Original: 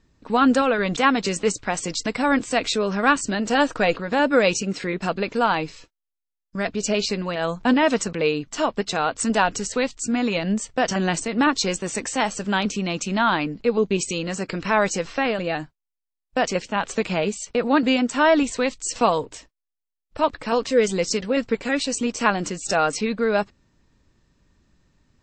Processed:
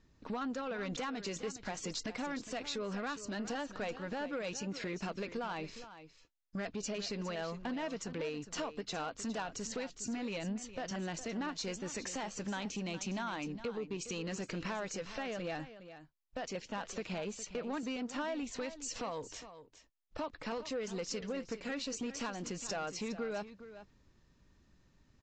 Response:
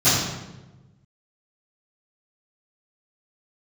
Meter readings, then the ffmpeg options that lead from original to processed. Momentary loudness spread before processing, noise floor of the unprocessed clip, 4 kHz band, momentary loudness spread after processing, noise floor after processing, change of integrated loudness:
7 LU, −84 dBFS, −15.5 dB, 5 LU, −68 dBFS, −17.5 dB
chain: -af "acompressor=threshold=-29dB:ratio=6,aresample=16000,asoftclip=type=tanh:threshold=-26.5dB,aresample=44100,aecho=1:1:411:0.224,volume=-5dB"

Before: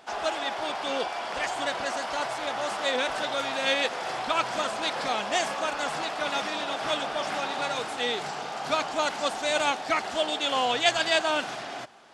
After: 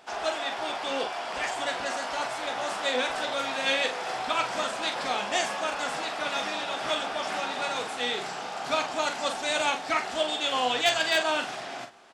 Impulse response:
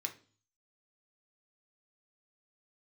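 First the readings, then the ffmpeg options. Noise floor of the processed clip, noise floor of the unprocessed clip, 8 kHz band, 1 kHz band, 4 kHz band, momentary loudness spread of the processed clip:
−37 dBFS, −37 dBFS, +0.5 dB, −1.0 dB, 0.0 dB, 6 LU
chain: -filter_complex "[0:a]aecho=1:1:16|44:0.299|0.422,asplit=2[link_01][link_02];[1:a]atrim=start_sample=2205[link_03];[link_02][link_03]afir=irnorm=-1:irlink=0,volume=-10.5dB[link_04];[link_01][link_04]amix=inputs=2:normalize=0,aeval=exprs='0.335*(abs(mod(val(0)/0.335+3,4)-2)-1)':channel_layout=same,volume=-3dB"

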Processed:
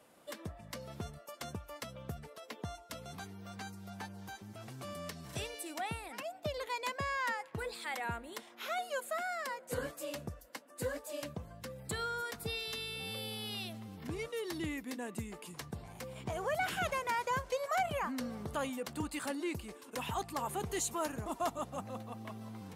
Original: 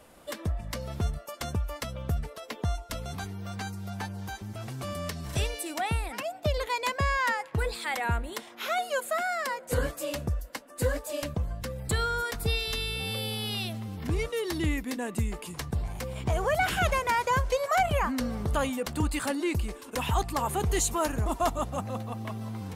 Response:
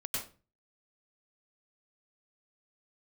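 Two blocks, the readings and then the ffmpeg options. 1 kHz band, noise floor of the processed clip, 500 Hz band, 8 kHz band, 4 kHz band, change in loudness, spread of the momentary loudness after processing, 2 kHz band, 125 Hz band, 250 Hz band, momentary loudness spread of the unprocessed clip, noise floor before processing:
−8.0 dB, −56 dBFS, −8.0 dB, −8.0 dB, −8.0 dB, −9.0 dB, 12 LU, −8.0 dB, −14.0 dB, −8.5 dB, 10 LU, −48 dBFS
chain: -af "highpass=130,volume=-8dB"

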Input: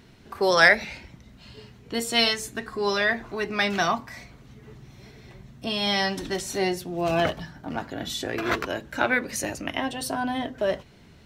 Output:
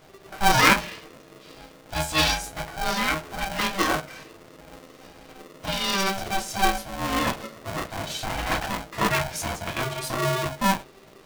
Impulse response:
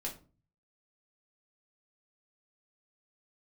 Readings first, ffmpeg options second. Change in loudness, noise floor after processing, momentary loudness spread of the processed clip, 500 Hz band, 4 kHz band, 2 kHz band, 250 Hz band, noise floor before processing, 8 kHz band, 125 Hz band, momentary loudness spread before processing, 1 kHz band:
0.0 dB, −50 dBFS, 12 LU, −4.5 dB, +0.5 dB, −1.5 dB, −0.5 dB, −52 dBFS, +4.0 dB, +5.0 dB, 13 LU, +4.0 dB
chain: -filter_complex "[1:a]atrim=start_sample=2205,atrim=end_sample=3528,asetrate=57330,aresample=44100[link_01];[0:a][link_01]afir=irnorm=-1:irlink=0,aeval=exprs='val(0)*sgn(sin(2*PI*390*n/s))':channel_layout=same,volume=2dB"

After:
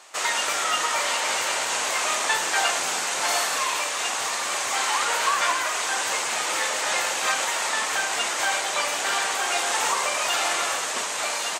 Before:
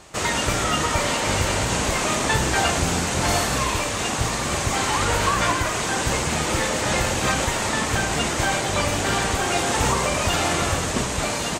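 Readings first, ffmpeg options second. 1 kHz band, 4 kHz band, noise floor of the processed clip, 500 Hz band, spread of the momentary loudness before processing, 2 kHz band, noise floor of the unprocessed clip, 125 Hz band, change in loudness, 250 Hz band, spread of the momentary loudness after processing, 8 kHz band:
−1.5 dB, 0.0 dB, −28 dBFS, −6.5 dB, 3 LU, 0.0 dB, −26 dBFS, below −30 dB, −1.5 dB, −17.5 dB, 3 LU, 0.0 dB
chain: -af "highpass=750"

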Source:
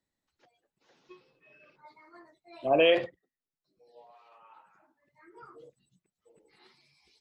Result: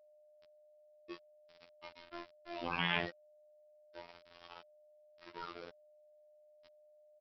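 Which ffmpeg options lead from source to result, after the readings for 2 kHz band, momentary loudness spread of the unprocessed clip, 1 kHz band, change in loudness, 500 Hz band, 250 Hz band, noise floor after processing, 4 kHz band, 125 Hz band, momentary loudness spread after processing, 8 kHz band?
−4.0 dB, 17 LU, −6.5 dB, −16.0 dB, −19.0 dB, −9.5 dB, −65 dBFS, −6.5 dB, +1.0 dB, 22 LU, can't be measured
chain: -af "aresample=8000,aresample=44100,afftfilt=real='re*lt(hypot(re,im),0.0708)':imag='im*lt(hypot(re,im),0.0708)':win_size=1024:overlap=0.75,aresample=11025,aeval=exprs='val(0)*gte(abs(val(0)),0.00282)':channel_layout=same,aresample=44100,aeval=exprs='val(0)+0.000398*sin(2*PI*620*n/s)':channel_layout=same,afftfilt=real='hypot(re,im)*cos(PI*b)':imag='0':win_size=2048:overlap=0.75,volume=9dB"

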